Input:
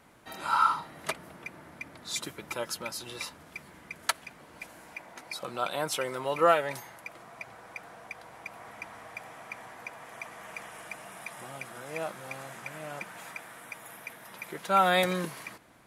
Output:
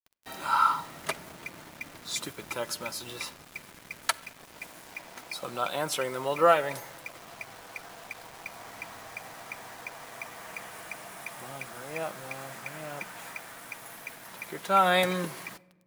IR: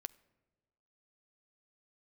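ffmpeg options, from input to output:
-filter_complex "[0:a]acrusher=bits=7:mix=0:aa=0.000001[link_01];[1:a]atrim=start_sample=2205[link_02];[link_01][link_02]afir=irnorm=-1:irlink=0,volume=5dB"

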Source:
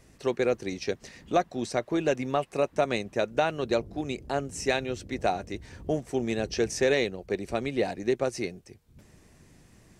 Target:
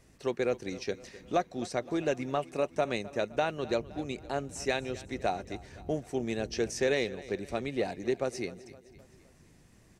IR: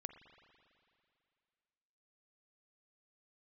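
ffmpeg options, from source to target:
-af "aecho=1:1:258|516|774|1032:0.126|0.0655|0.034|0.0177,volume=-4dB"

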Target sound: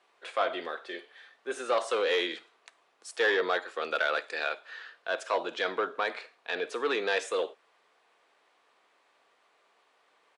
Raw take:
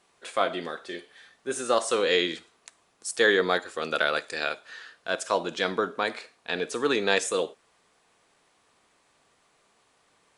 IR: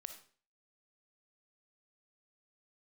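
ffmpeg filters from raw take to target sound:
-filter_complex "[0:a]asoftclip=type=tanh:threshold=-18dB,acrossover=split=330 4200:gain=0.0794 1 0.2[link_01][link_02][link_03];[link_01][link_02][link_03]amix=inputs=3:normalize=0,aresample=32000,aresample=44100"

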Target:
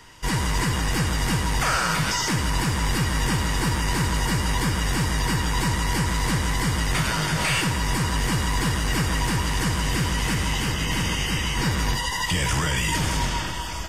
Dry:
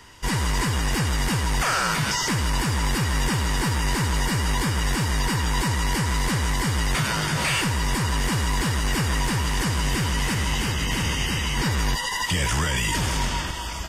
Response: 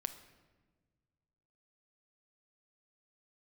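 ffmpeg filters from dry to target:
-filter_complex "[1:a]atrim=start_sample=2205[link_01];[0:a][link_01]afir=irnorm=-1:irlink=0,volume=1dB"

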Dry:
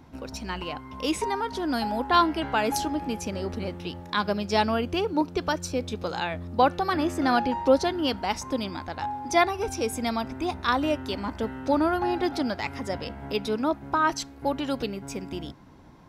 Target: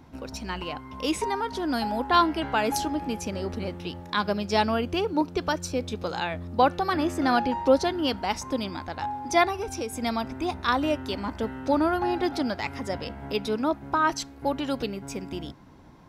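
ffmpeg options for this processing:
ffmpeg -i in.wav -filter_complex "[0:a]asettb=1/sr,asplit=3[link_01][link_02][link_03];[link_01]atrim=end=9.544[link_04];[link_02]atrim=start=9.54:end=10.02,asetpts=PTS-STARTPTS,afade=type=in:duration=0.004:curve=qsin,afade=type=out:start_time=0.476:duration=0.004:curve=qsin,acompressor=threshold=-28dB:ratio=6[link_05];[link_03]atrim=start=10.016[link_06];[link_04][link_05]acrossfade=duration=0.004:curve1=hsin:curve2=qsin[link_07];[link_07][link_06]acrossfade=duration=0.004:curve1=qsin:curve2=hsin" out.wav

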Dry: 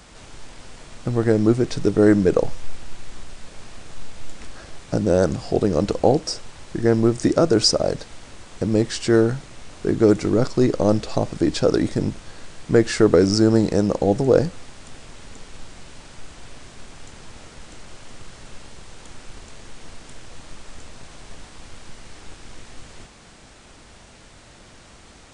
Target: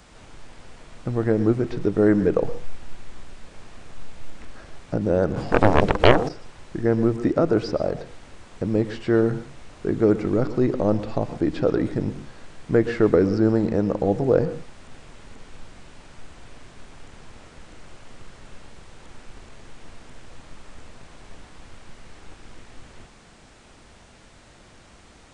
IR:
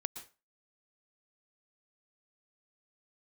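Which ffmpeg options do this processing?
-filter_complex "[0:a]acrossover=split=3000[link_01][link_02];[link_02]acompressor=threshold=-53dB:ratio=4:attack=1:release=60[link_03];[link_01][link_03]amix=inputs=2:normalize=0,asplit=2[link_04][link_05];[1:a]atrim=start_sample=2205[link_06];[link_05][link_06]afir=irnorm=-1:irlink=0,volume=3dB[link_07];[link_04][link_07]amix=inputs=2:normalize=0,asplit=3[link_08][link_09][link_10];[link_08]afade=type=out:start_time=5.35:duration=0.02[link_11];[link_09]aeval=exprs='1.58*(cos(1*acos(clip(val(0)/1.58,-1,1)))-cos(1*PI/2))+0.141*(cos(5*acos(clip(val(0)/1.58,-1,1)))-cos(5*PI/2))+0.562*(cos(6*acos(clip(val(0)/1.58,-1,1)))-cos(6*PI/2))+0.794*(cos(7*acos(clip(val(0)/1.58,-1,1)))-cos(7*PI/2))':channel_layout=same,afade=type=in:start_time=5.35:duration=0.02,afade=type=out:start_time=6.28:duration=0.02[link_12];[link_10]afade=type=in:start_time=6.28:duration=0.02[link_13];[link_11][link_12][link_13]amix=inputs=3:normalize=0,volume=-10dB"

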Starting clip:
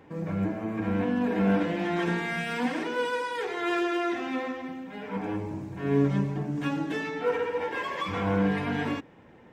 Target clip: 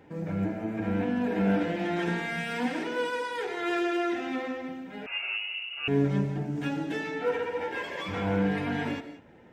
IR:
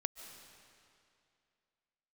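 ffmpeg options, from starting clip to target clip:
-filter_complex "[0:a]bandreject=frequency=1100:width=6.4[link_01];[1:a]atrim=start_sample=2205,afade=type=out:start_time=0.25:duration=0.01,atrim=end_sample=11466[link_02];[link_01][link_02]afir=irnorm=-1:irlink=0,asettb=1/sr,asplit=3[link_03][link_04][link_05];[link_03]atrim=end=5.064[link_06];[link_04]atrim=start=5.06:end=5.88,asetpts=PTS-STARTPTS,afade=type=in:duration=0.004:curve=qsin,afade=type=out:start_time=0.816:duration=0.004:curve=qsin,lowpass=frequency=2600:width_type=q:width=0.5098,lowpass=frequency=2600:width_type=q:width=0.6013,lowpass=frequency=2600:width_type=q:width=0.9,lowpass=frequency=2600:width_type=q:width=2.563,afreqshift=-3000[link_07];[link_05]atrim=start=5.876[link_08];[link_06][link_07]acrossfade=duration=0.004:curve1=hsin:curve2=qsin[link_09];[link_09][link_08]acrossfade=duration=0.004:curve1=qsin:curve2=hsin"

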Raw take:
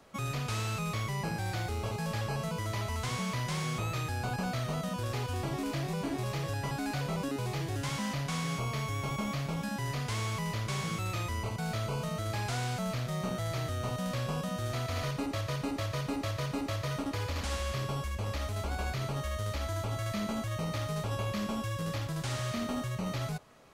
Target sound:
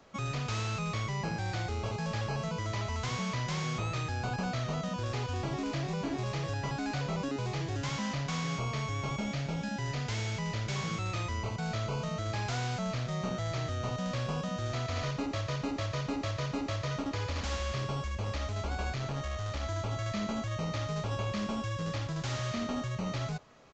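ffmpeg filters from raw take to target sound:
ffmpeg -i in.wav -filter_complex "[0:a]asettb=1/sr,asplit=3[link_01][link_02][link_03];[link_01]atrim=end=9.174[link_04];[link_02]atrim=start=9.17:end=10.76,asetpts=PTS-STARTPTS,afade=type=in:duration=0.004:curve=qsin,afade=type=out:start_time=1.586:duration=0.004:curve=qsin,bandreject=frequency=1100:width=6.1[link_05];[link_03]atrim=start=10.756[link_06];[link_04][link_05]acrossfade=duration=0.004:curve1=hsin:curve2=qsin[link_07];[link_07][link_06]acrossfade=duration=0.004:curve1=qsin:curve2=hsin,asettb=1/sr,asplit=3[link_08][link_09][link_10];[link_08]atrim=end=18.934[link_11];[link_09]atrim=start=18.93:end=19.63,asetpts=PTS-STARTPTS,afade=type=in:duration=0.004:curve=qsin,afade=type=out:start_time=0.696:duration=0.004:curve=qsin,aeval=exprs='clip(val(0),-1,0.0211)':channel_layout=same[link_12];[link_10]atrim=start=19.626[link_13];[link_11][link_12]acrossfade=duration=0.004:curve1=hsin:curve2=qsin[link_14];[link_14][link_13]acrossfade=duration=0.004:curve1=qsin:curve2=hsin,aresample=16000,aresample=44100" out.wav

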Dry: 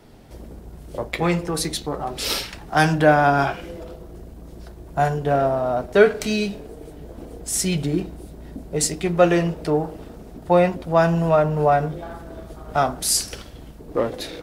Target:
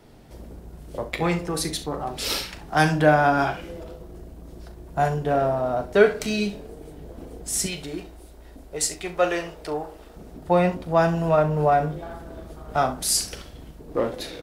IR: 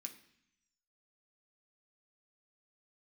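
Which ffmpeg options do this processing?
-filter_complex "[0:a]asettb=1/sr,asplit=3[link_01][link_02][link_03];[link_01]atrim=end=7.664[link_04];[link_02]atrim=start=7.66:end=10.16,asetpts=PTS-STARTPTS,afade=type=in:duration=0.004:curve=qsin,afade=type=out:start_time=2.496:duration=0.004:curve=qsin,equalizer=frequency=160:width_type=o:width=2.1:gain=-14.5[link_05];[link_03]atrim=start=10.156[link_06];[link_04][link_05]acrossfade=duration=0.004:curve1=hsin:curve2=qsin[link_07];[link_07][link_06]acrossfade=duration=0.004:curve1=qsin:curve2=hsin,aecho=1:1:39|67:0.251|0.168,volume=-2.5dB"

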